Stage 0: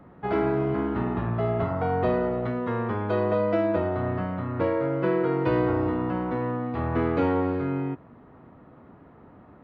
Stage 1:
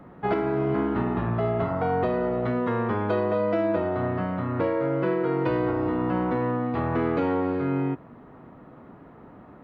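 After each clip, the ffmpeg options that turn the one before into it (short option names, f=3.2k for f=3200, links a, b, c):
-af "equalizer=f=82:t=o:w=0.59:g=-7,alimiter=limit=-18.5dB:level=0:latency=1:release=487,volume=3.5dB"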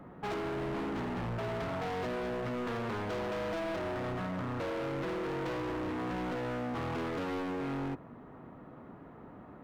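-af "asoftclip=type=hard:threshold=-31dB,volume=-3dB"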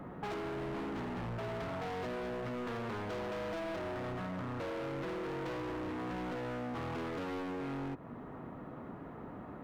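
-af "acompressor=threshold=-43dB:ratio=6,volume=4dB"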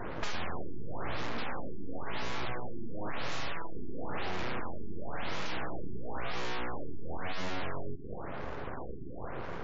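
-af "aeval=exprs='abs(val(0))':c=same,afftfilt=real='re*lt(b*sr/1024,420*pow(7500/420,0.5+0.5*sin(2*PI*0.97*pts/sr)))':imag='im*lt(b*sr/1024,420*pow(7500/420,0.5+0.5*sin(2*PI*0.97*pts/sr)))':win_size=1024:overlap=0.75,volume=10dB"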